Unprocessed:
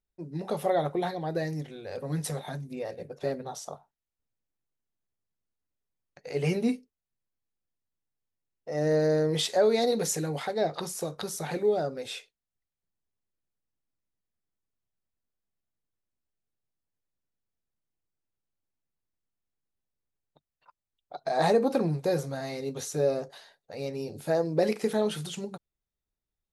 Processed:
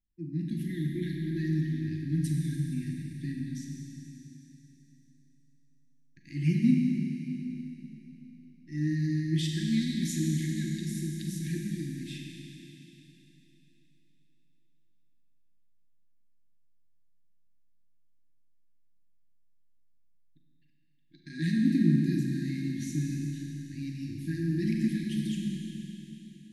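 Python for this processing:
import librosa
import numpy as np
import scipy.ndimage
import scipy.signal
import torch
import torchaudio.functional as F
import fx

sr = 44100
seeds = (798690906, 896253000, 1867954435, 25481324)

y = fx.brickwall_bandstop(x, sr, low_hz=350.0, high_hz=1600.0)
y = fx.tilt_shelf(y, sr, db=6.5, hz=1200.0)
y = fx.rev_schroeder(y, sr, rt60_s=3.6, comb_ms=32, drr_db=-0.5)
y = F.gain(torch.from_numpy(y), -3.5).numpy()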